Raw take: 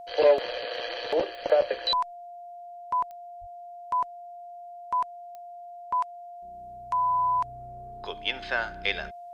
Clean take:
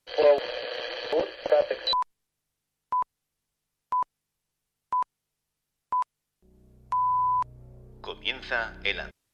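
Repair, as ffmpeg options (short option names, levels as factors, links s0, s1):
-filter_complex "[0:a]adeclick=t=4,bandreject=f=700:w=30,asplit=3[s0][s1][s2];[s0]afade=t=out:st=3.4:d=0.02[s3];[s1]highpass=f=140:w=0.5412,highpass=f=140:w=1.3066,afade=t=in:st=3.4:d=0.02,afade=t=out:st=3.52:d=0.02[s4];[s2]afade=t=in:st=3.52:d=0.02[s5];[s3][s4][s5]amix=inputs=3:normalize=0"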